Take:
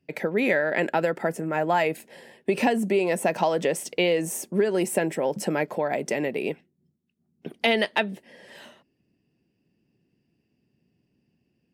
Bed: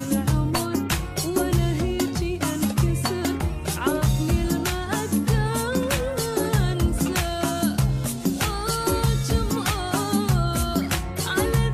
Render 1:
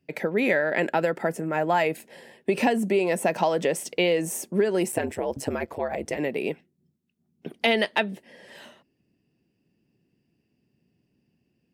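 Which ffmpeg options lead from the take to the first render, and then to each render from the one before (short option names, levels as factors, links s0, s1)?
-filter_complex "[0:a]asplit=3[s0][s1][s2];[s0]afade=t=out:st=4.91:d=0.02[s3];[s1]aeval=exprs='val(0)*sin(2*PI*70*n/s)':c=same,afade=t=in:st=4.91:d=0.02,afade=t=out:st=6.17:d=0.02[s4];[s2]afade=t=in:st=6.17:d=0.02[s5];[s3][s4][s5]amix=inputs=3:normalize=0"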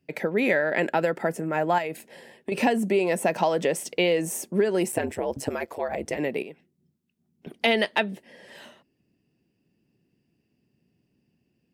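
-filter_complex "[0:a]asettb=1/sr,asplit=3[s0][s1][s2];[s0]atrim=end=1.784[s3];[s1]atrim=start=1.78:end=2.52,asetpts=PTS-STARTPTS,afade=t=in:d=0.004:c=qsin,afade=t=out:st=0.736:d=0.004:c=qsin,acompressor=threshold=0.0398:ratio=3:attack=3.2:release=140:knee=1:detection=peak[s4];[s2]atrim=start=2.516[s5];[s3][s4]acrossfade=d=0.004:c1=hsin:c2=qsin[s6];[s6][s5]acrossfade=d=0.004:c1=qsin:c2=hsin,asettb=1/sr,asplit=3[s7][s8][s9];[s7]atrim=end=5.494[s10];[s8]atrim=start=5.49:end=5.89,asetpts=PTS-STARTPTS,afade=t=in:d=0.004:c=qsin,afade=t=out:st=0.396:d=0.004:c=qsin,bass=f=250:g=-10,treble=f=4000:g=5[s11];[s9]atrim=start=5.886[s12];[s10][s11]acrossfade=d=0.004:c1=hsin:c2=qsin[s13];[s13][s12]acrossfade=d=0.004:c1=qsin:c2=hsin,asettb=1/sr,asplit=3[s14][s15][s16];[s14]atrim=end=6.424[s17];[s15]atrim=start=6.42:end=7.47,asetpts=PTS-STARTPTS,afade=t=in:d=0.004:c=qsin,afade=t=out:st=1.046:d=0.004:c=qsin,acompressor=threshold=0.00447:ratio=2:attack=3.2:release=140:knee=1:detection=peak[s18];[s16]atrim=start=7.466[s19];[s17][s18]acrossfade=d=0.004:c1=hsin:c2=qsin[s20];[s20][s19]acrossfade=d=0.004:c1=qsin:c2=hsin"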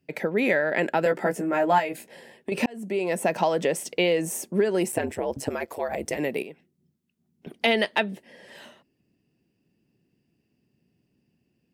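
-filter_complex "[0:a]asettb=1/sr,asplit=3[s0][s1][s2];[s0]atrim=end=1.044[s3];[s1]atrim=start=1.04:end=2.07,asetpts=PTS-STARTPTS,afade=t=in:d=0.004:c=qsin,afade=t=out:st=1.026:d=0.004:c=qsin,asplit=2[s4][s5];[s5]adelay=16,volume=0.708[s6];[s4][s6]amix=inputs=2:normalize=0,atrim=end_sample=45423[s7];[s2]atrim=start=2.066[s8];[s3][s7]acrossfade=d=0.004:c1=hsin:c2=qsin[s9];[s9][s8]acrossfade=d=0.004:c1=qsin:c2=hsin,asettb=1/sr,asplit=3[s10][s11][s12];[s10]atrim=end=5.704[s13];[s11]atrim=start=5.7:end=6.47,asetpts=PTS-STARTPTS,afade=t=in:d=0.004:c=qsin,afade=t=out:st=0.766:d=0.004:c=qsin,highshelf=f=7100:g=10[s14];[s12]atrim=start=6.466[s15];[s13][s14]acrossfade=d=0.004:c1=hsin:c2=qsin[s16];[s16][s15]acrossfade=d=0.004:c1=qsin:c2=hsin,asplit=2[s17][s18];[s17]atrim=end=2.66,asetpts=PTS-STARTPTS,afade=t=out:st=2.656:d=0.004:c=hsin[s19];[s18]atrim=start=2.66,asetpts=PTS-STARTPTS,afade=t=in:d=0.74:c=qsin[s20];[s19][s20]concat=n=2:v=0:a=1"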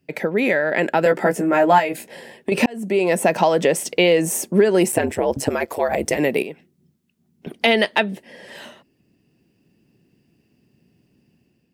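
-filter_complex "[0:a]asplit=2[s0][s1];[s1]alimiter=limit=0.168:level=0:latency=1:release=382,volume=0.708[s2];[s0][s2]amix=inputs=2:normalize=0,dynaudnorm=f=600:g=3:m=1.78"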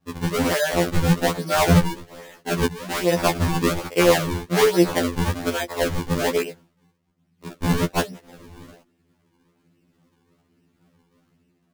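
-af "acrusher=samples=39:mix=1:aa=0.000001:lfo=1:lforange=62.4:lforate=1.2,afftfilt=real='re*2*eq(mod(b,4),0)':imag='im*2*eq(mod(b,4),0)':win_size=2048:overlap=0.75"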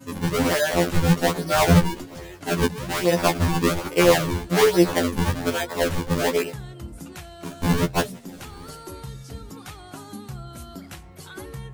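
-filter_complex "[1:a]volume=0.168[s0];[0:a][s0]amix=inputs=2:normalize=0"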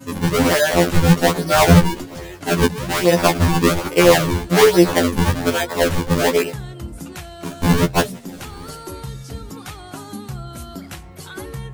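-af "volume=1.88,alimiter=limit=0.891:level=0:latency=1"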